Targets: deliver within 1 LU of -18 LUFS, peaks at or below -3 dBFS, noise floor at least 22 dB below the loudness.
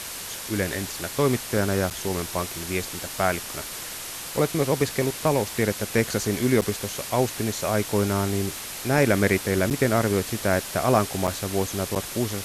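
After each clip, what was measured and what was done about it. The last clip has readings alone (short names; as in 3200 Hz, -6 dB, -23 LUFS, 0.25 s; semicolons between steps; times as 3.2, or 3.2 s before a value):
dropouts 5; longest dropout 7.9 ms; noise floor -36 dBFS; noise floor target -47 dBFS; loudness -25.0 LUFS; peak -6.0 dBFS; loudness target -18.0 LUFS
-> interpolate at 1.9/6.61/9.7/11.27/11.95, 7.9 ms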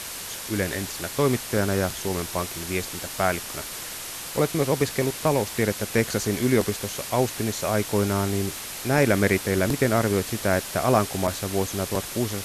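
dropouts 0; noise floor -36 dBFS; noise floor target -47 dBFS
-> denoiser 11 dB, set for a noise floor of -36 dBFS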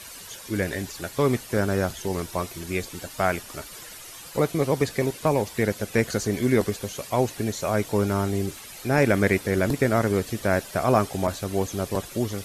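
noise floor -42 dBFS; noise floor target -48 dBFS
-> denoiser 6 dB, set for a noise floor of -42 dBFS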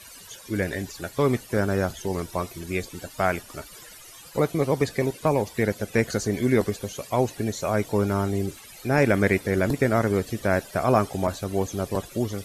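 noise floor -46 dBFS; noise floor target -48 dBFS
-> denoiser 6 dB, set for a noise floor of -46 dBFS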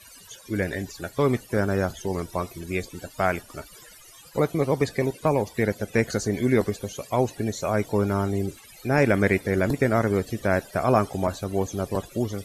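noise floor -49 dBFS; loudness -25.5 LUFS; peak -6.0 dBFS; loudness target -18.0 LUFS
-> gain +7.5 dB; limiter -3 dBFS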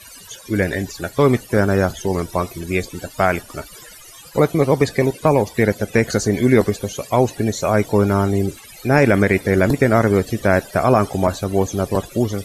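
loudness -18.5 LUFS; peak -3.0 dBFS; noise floor -41 dBFS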